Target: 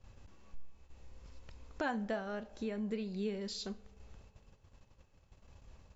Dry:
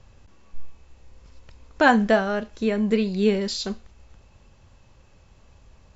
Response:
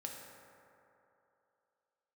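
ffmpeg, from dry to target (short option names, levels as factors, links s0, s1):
-filter_complex "[0:a]acompressor=threshold=0.00891:ratio=2,agate=range=0.282:threshold=0.00282:ratio=16:detection=peak,asplit=2[s0][s1];[1:a]atrim=start_sample=2205,lowpass=1100[s2];[s1][s2]afir=irnorm=-1:irlink=0,volume=0.2[s3];[s0][s3]amix=inputs=2:normalize=0,volume=0.562"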